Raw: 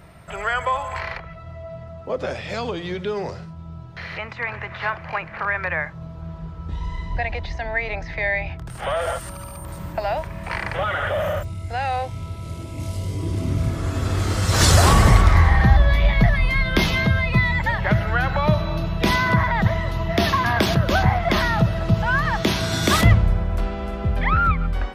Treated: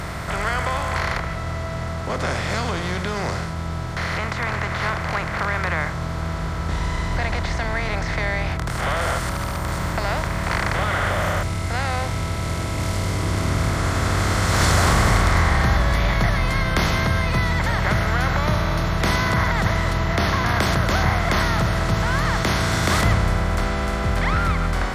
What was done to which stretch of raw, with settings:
19.93–20.49 s: low-pass 3.4 kHz 6 dB/octave
whole clip: spectral levelling over time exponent 0.4; trim -8.5 dB

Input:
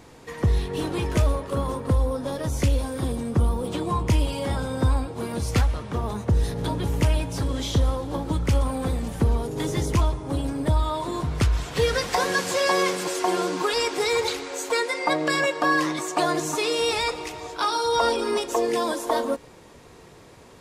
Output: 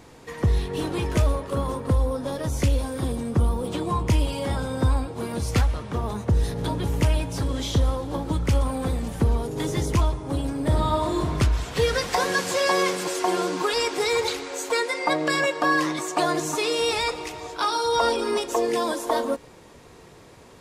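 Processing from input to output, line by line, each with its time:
10.60–11.33 s: reverb throw, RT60 1.1 s, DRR 0.5 dB

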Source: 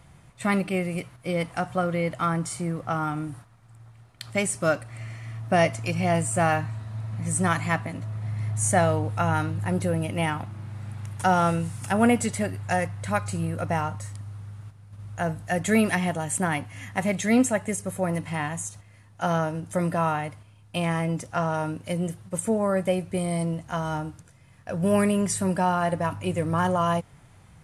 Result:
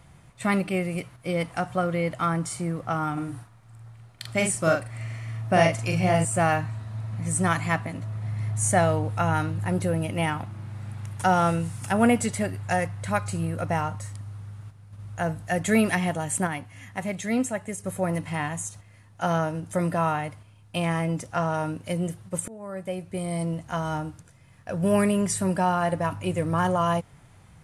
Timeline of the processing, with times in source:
3.13–6.25 s: doubling 43 ms -4 dB
16.47–17.84 s: gain -5 dB
22.48–23.60 s: fade in, from -23 dB

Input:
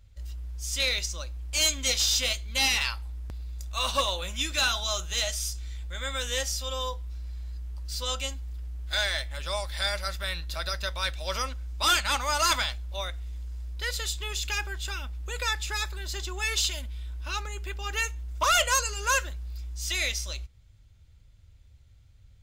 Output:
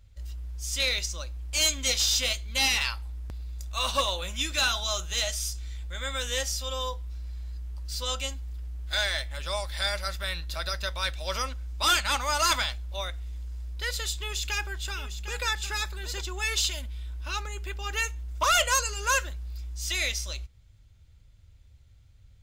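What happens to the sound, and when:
14.14–16.21 s: delay 755 ms -10.5 dB

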